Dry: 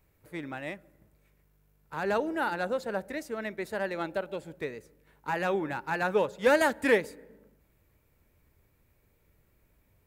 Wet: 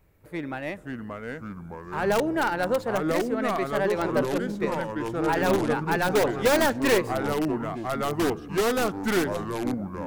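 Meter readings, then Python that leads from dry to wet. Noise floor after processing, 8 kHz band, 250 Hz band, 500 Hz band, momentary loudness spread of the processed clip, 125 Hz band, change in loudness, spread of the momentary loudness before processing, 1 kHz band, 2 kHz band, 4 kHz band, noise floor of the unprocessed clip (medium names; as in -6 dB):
-42 dBFS, +11.5 dB, +10.0 dB, +6.0 dB, 13 LU, +12.0 dB, +4.5 dB, 17 LU, +6.5 dB, +3.5 dB, +9.5 dB, -69 dBFS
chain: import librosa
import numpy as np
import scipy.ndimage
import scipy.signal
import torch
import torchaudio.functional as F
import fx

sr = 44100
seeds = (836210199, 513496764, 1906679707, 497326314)

p1 = fx.tracing_dist(x, sr, depth_ms=0.16)
p2 = fx.high_shelf(p1, sr, hz=2400.0, db=-6.0)
p3 = (np.mod(10.0 ** (21.5 / 20.0) * p2 + 1.0, 2.0) - 1.0) / 10.0 ** (21.5 / 20.0)
p4 = p2 + F.gain(torch.from_numpy(p3), -4.0).numpy()
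p5 = fx.echo_pitch(p4, sr, ms=443, semitones=-4, count=3, db_per_echo=-3.0)
y = F.gain(torch.from_numpy(p5), 2.0).numpy()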